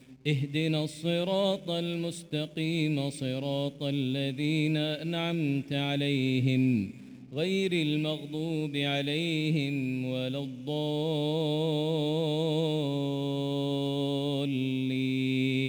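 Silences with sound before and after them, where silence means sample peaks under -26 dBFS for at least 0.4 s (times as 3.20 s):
6.84–7.37 s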